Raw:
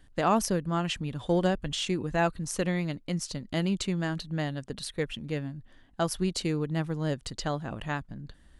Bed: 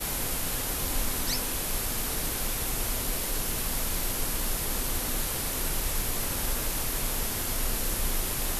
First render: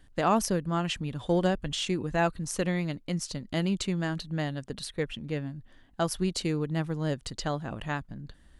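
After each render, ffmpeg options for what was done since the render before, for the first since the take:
-filter_complex "[0:a]asettb=1/sr,asplit=3[a][b][c];[a]atrim=end=4.864[d];[b]atrim=start=4.86:end=5.47,asetpts=PTS-STARTPTS,afade=t=in:d=0.004:c=qsin,afade=t=out:st=0.606:d=0.004:c=qsin,highshelf=f=4.9k:g=-4.5[e];[c]atrim=start=5.466[f];[d][e]acrossfade=d=0.004:c1=hsin:c2=qsin[g];[g][f]acrossfade=d=0.004:c1=qsin:c2=hsin"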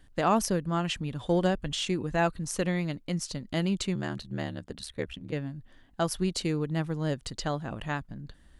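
-filter_complex "[0:a]asplit=3[a][b][c];[a]afade=t=out:st=3.94:d=0.02[d];[b]aeval=exprs='val(0)*sin(2*PI*37*n/s)':c=same,afade=t=in:st=3.94:d=0.02,afade=t=out:st=5.31:d=0.02[e];[c]afade=t=in:st=5.31:d=0.02[f];[d][e][f]amix=inputs=3:normalize=0"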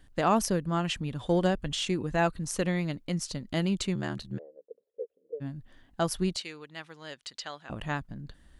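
-filter_complex "[0:a]asplit=3[a][b][c];[a]afade=t=out:st=4.37:d=0.02[d];[b]asuperpass=centerf=480:order=4:qfactor=4.6,afade=t=in:st=4.37:d=0.02,afade=t=out:st=5.4:d=0.02[e];[c]afade=t=in:st=5.4:d=0.02[f];[d][e][f]amix=inputs=3:normalize=0,asettb=1/sr,asplit=3[g][h][i];[g]atrim=end=6.364[j];[h]atrim=start=6.36:end=7.7,asetpts=PTS-STARTPTS,afade=t=in:d=0.004:c=qsin,afade=t=out:st=1.336:d=0.004:c=qsin,bandpass=f=3.1k:t=q:w=0.69[k];[i]atrim=start=7.696[l];[j][k]acrossfade=d=0.004:c1=hsin:c2=qsin[m];[m][l]acrossfade=d=0.004:c1=qsin:c2=hsin"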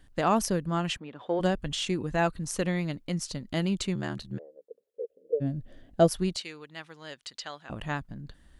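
-filter_complex "[0:a]asplit=3[a][b][c];[a]afade=t=out:st=0.96:d=0.02[d];[b]highpass=360,lowpass=2.3k,afade=t=in:st=0.96:d=0.02,afade=t=out:st=1.39:d=0.02[e];[c]afade=t=in:st=1.39:d=0.02[f];[d][e][f]amix=inputs=3:normalize=0,asplit=3[g][h][i];[g]afade=t=out:st=5.03:d=0.02[j];[h]lowshelf=f=750:t=q:w=3:g=6.5,afade=t=in:st=5.03:d=0.02,afade=t=out:st=6.07:d=0.02[k];[i]afade=t=in:st=6.07:d=0.02[l];[j][k][l]amix=inputs=3:normalize=0"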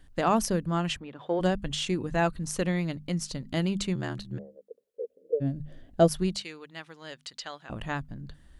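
-af "lowshelf=f=150:g=3.5,bandreject=f=50:t=h:w=6,bandreject=f=100:t=h:w=6,bandreject=f=150:t=h:w=6,bandreject=f=200:t=h:w=6,bandreject=f=250:t=h:w=6"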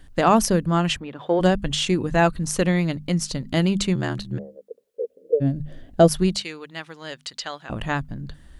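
-af "volume=7.5dB,alimiter=limit=-2dB:level=0:latency=1"

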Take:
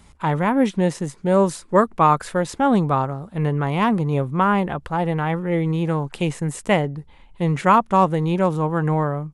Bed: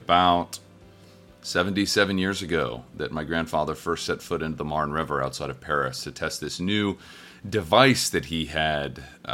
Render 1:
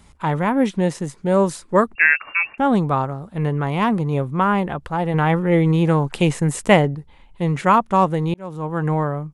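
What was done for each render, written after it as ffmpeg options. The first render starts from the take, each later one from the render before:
-filter_complex "[0:a]asettb=1/sr,asplit=3[a][b][c];[a]atrim=end=1.954[d];[b]atrim=start=1.95:end=2.58,asetpts=PTS-STARTPTS,afade=t=in:d=0.004:c=qsin,afade=t=out:st=0.626:d=0.004:c=qsin,lowpass=f=2.4k:t=q:w=0.5098,lowpass=f=2.4k:t=q:w=0.6013,lowpass=f=2.4k:t=q:w=0.9,lowpass=f=2.4k:t=q:w=2.563,afreqshift=-2800[e];[c]atrim=start=2.576[f];[d][e]acrossfade=d=0.004:c1=hsin:c2=qsin[g];[g][f]acrossfade=d=0.004:c1=qsin:c2=hsin,asplit=4[h][i][j][k];[h]atrim=end=5.142[l];[i]atrim=start=5.138:end=6.952,asetpts=PTS-STARTPTS,volume=5dB[m];[j]atrim=start=6.948:end=8.34,asetpts=PTS-STARTPTS,afade=t=out:st=1.388:d=0.004:c=hsin[n];[k]atrim=start=8.34,asetpts=PTS-STARTPTS,afade=t=in:d=0.52[o];[l][m]acrossfade=d=0.004:c1=hsin:c2=hsin[p];[n][o]concat=n=2:v=0:a=1[q];[p][q]acrossfade=d=0.004:c1=hsin:c2=hsin"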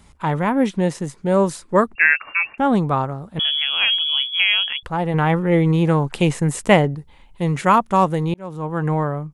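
-filter_complex "[0:a]asettb=1/sr,asplit=3[a][b][c];[a]atrim=end=3.394[d];[b]atrim=start=3.39:end=4.83,asetpts=PTS-STARTPTS,afade=t=in:d=0.004:c=qsin,afade=t=out:st=1.436:d=0.004:c=qsin,lowpass=f=3k:t=q:w=0.5098,lowpass=f=3k:t=q:w=0.6013,lowpass=f=3k:t=q:w=0.9,lowpass=f=3k:t=q:w=2.563,afreqshift=-3500[e];[c]atrim=start=4.826[f];[d][e]acrossfade=d=0.004:c1=hsin:c2=qsin[g];[g][f]acrossfade=d=0.004:c1=qsin:c2=hsin,asettb=1/sr,asplit=3[h][i][j];[h]atrim=end=6.894[k];[i]atrim=start=6.89:end=8.23,asetpts=PTS-STARTPTS,afade=t=in:d=0.004:c=qsin,afade=t=out:st=1.336:d=0.004:c=qsin,highshelf=f=5.6k:g=6.5[l];[j]atrim=start=8.226[m];[k][l]acrossfade=d=0.004:c1=hsin:c2=qsin[n];[n][m]acrossfade=d=0.004:c1=qsin:c2=hsin"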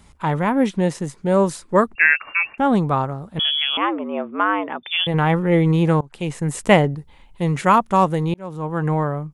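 -filter_complex "[0:a]asettb=1/sr,asplit=3[a][b][c];[a]atrim=end=3.774[d];[b]atrim=start=3.77:end=5.07,asetpts=PTS-STARTPTS,afade=t=in:d=0.004:c=qsin,afade=t=out:st=1.296:d=0.004:c=qsin,lowpass=f=3.1k:t=q:w=0.5098,lowpass=f=3.1k:t=q:w=0.6013,lowpass=f=3.1k:t=q:w=0.9,lowpass=f=3.1k:t=q:w=2.563,afreqshift=-3600[e];[c]atrim=start=5.066[f];[d][e]acrossfade=d=0.004:c1=hsin:c2=qsin[g];[g][f]acrossfade=d=0.004:c1=qsin:c2=hsin,asplit=2[h][i];[h]atrim=end=6.01,asetpts=PTS-STARTPTS,afade=t=out:st=6.006:d=0.004:c=hsin:silence=0.0630957[j];[i]atrim=start=6.01,asetpts=PTS-STARTPTS,afade=t=in:d=0.68:silence=0.0630957[k];[j][k]concat=n=2:v=0:a=1"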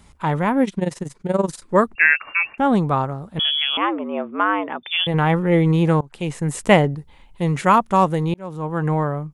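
-filter_complex "[0:a]asettb=1/sr,asplit=3[a][b][c];[a]atrim=end=0.644[d];[b]atrim=start=0.64:end=1.62,asetpts=PTS-STARTPTS,afade=t=in:d=0.004:c=qsin,afade=t=out:st=0.976:d=0.004:c=qsin,tremolo=f=21:d=0.857[e];[c]atrim=start=1.616[f];[d][e]acrossfade=d=0.004:c1=hsin:c2=qsin[g];[g][f]acrossfade=d=0.004:c1=qsin:c2=hsin"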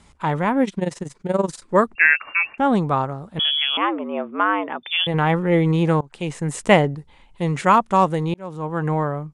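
-af "lowpass=f=9.8k:w=0.5412,lowpass=f=9.8k:w=1.3066,lowshelf=f=170:g=-4"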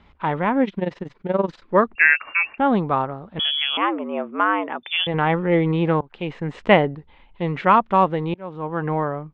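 -af "lowpass=f=3.5k:w=0.5412,lowpass=f=3.5k:w=1.3066,equalizer=f=140:w=2.5:g=-5"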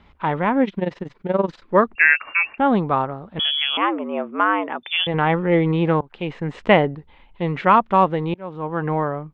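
-af "volume=1dB,alimiter=limit=-2dB:level=0:latency=1"

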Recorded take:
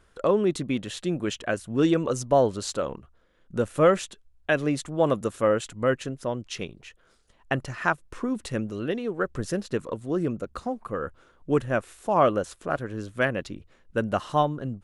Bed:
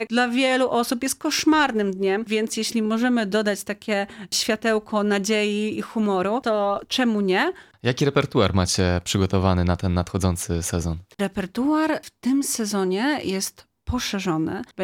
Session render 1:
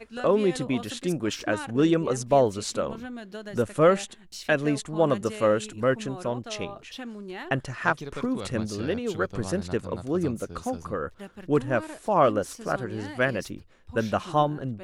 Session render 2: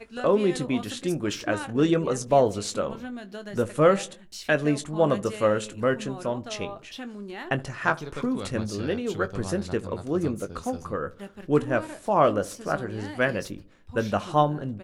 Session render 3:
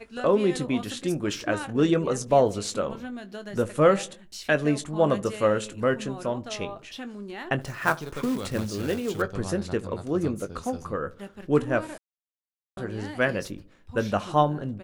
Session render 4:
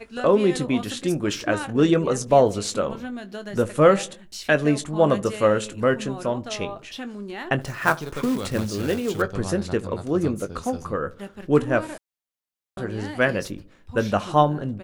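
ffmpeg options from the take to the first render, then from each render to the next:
-filter_complex "[1:a]volume=-17.5dB[a];[0:a][a]amix=inputs=2:normalize=0"
-filter_complex "[0:a]asplit=2[a][b];[b]adelay=20,volume=-11dB[c];[a][c]amix=inputs=2:normalize=0,asplit=2[d][e];[e]adelay=73,lowpass=f=970:p=1,volume=-19dB,asplit=2[f][g];[g]adelay=73,lowpass=f=970:p=1,volume=0.54,asplit=2[h][i];[i]adelay=73,lowpass=f=970:p=1,volume=0.54,asplit=2[j][k];[k]adelay=73,lowpass=f=970:p=1,volume=0.54[l];[d][f][h][j][l]amix=inputs=5:normalize=0"
-filter_complex "[0:a]asettb=1/sr,asplit=3[a][b][c];[a]atrim=end=7.614[d];[b]atrim=start=7.61:end=9.22,asetpts=PTS-STARTPTS,afade=t=in:d=0.004:c=qsin,afade=t=out:st=1.606:d=0.004:c=qsin,acrusher=bits=4:mode=log:mix=0:aa=0.000001[e];[c]atrim=start=9.216[f];[d][e]acrossfade=d=0.004:c1=hsin:c2=qsin[g];[g][f]acrossfade=d=0.004:c1=qsin:c2=hsin,asplit=3[h][i][j];[h]atrim=end=11.98,asetpts=PTS-STARTPTS,afade=t=out:st=11.976:d=0.004:c=hsin[k];[i]atrim=start=11.98:end=12.77,asetpts=PTS-STARTPTS,volume=0[l];[j]atrim=start=12.77,asetpts=PTS-STARTPTS,afade=t=in:d=0.004:c=hsin[m];[k][l][m]concat=n=3:v=0:a=1"
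-af "volume=3.5dB"

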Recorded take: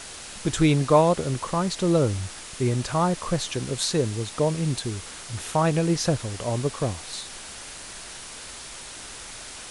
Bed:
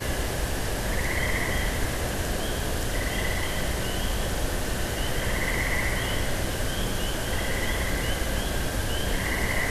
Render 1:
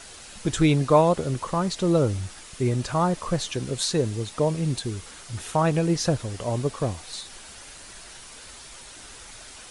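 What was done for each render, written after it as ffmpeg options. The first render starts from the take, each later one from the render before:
-af "afftdn=nr=6:nf=-40"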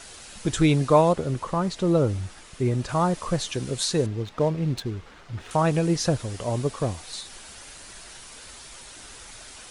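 -filter_complex "[0:a]asettb=1/sr,asplit=3[a][b][c];[a]atrim=end=1.134[d];[b]atrim=start=1.13:end=2.89,asetpts=PTS-STARTPTS,afade=t=in:d=0.004:c=qsin,afade=t=out:st=1.756:d=0.004:c=qsin,highshelf=f=3.6k:g=-7[e];[c]atrim=start=2.886[f];[d][e]acrossfade=d=0.004:c1=hsin:c2=qsin[g];[g][f]acrossfade=d=0.004:c1=qsin:c2=hsin,asettb=1/sr,asplit=3[h][i][j];[h]atrim=end=4.064[k];[i]atrim=start=4.06:end=5.51,asetpts=PTS-STARTPTS,afade=t=in:d=0.004:c=qsin,afade=t=out:st=1.446:d=0.004:c=qsin,adynamicsmooth=sensitivity=5:basefreq=2.2k[l];[j]atrim=start=5.506[m];[k][l]acrossfade=d=0.004:c1=hsin:c2=qsin[n];[n][m]acrossfade=d=0.004:c1=qsin:c2=hsin"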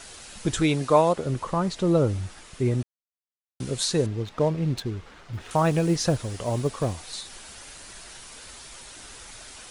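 -filter_complex "[0:a]asettb=1/sr,asplit=3[a][b][c];[a]atrim=end=0.604[d];[b]atrim=start=0.6:end=1.26,asetpts=PTS-STARTPTS,afade=t=in:d=0.004:c=qsin,afade=t=out:st=0.656:d=0.004:c=qsin,lowshelf=f=180:g=-9.5[e];[c]atrim=start=1.256[f];[d][e]acrossfade=d=0.004:c1=hsin:c2=qsin[g];[g][f]acrossfade=d=0.004:c1=qsin:c2=hsin,asettb=1/sr,asplit=3[h][i][j];[h]atrim=end=5.334[k];[i]atrim=start=5.33:end=6.94,asetpts=PTS-STARTPTS,afade=t=in:d=0.004:c=qsin,afade=t=out:st=1.606:d=0.004:c=qsin,acrusher=bits=9:mode=log:mix=0:aa=0.000001[l];[j]atrim=start=6.936[m];[k][l]acrossfade=d=0.004:c1=hsin:c2=qsin[n];[n][m]acrossfade=d=0.004:c1=qsin:c2=hsin,asplit=3[o][p][q];[o]atrim=end=2.83,asetpts=PTS-STARTPTS,afade=t=out:st=2.826:d=0.004:c=hsin[r];[p]atrim=start=2.83:end=3.6,asetpts=PTS-STARTPTS,volume=0[s];[q]atrim=start=3.6,asetpts=PTS-STARTPTS,afade=t=in:d=0.004:c=hsin[t];[r][s][t]concat=n=3:v=0:a=1"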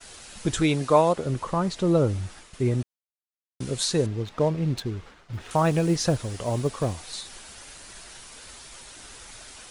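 -af "agate=range=-33dB:threshold=-42dB:ratio=3:detection=peak"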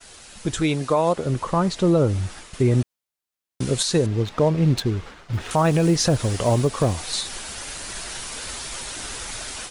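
-af "dynaudnorm=f=690:g=3:m=12dB,alimiter=limit=-9.5dB:level=0:latency=1:release=149"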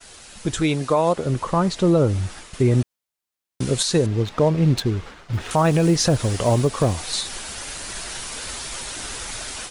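-af "volume=1dB"

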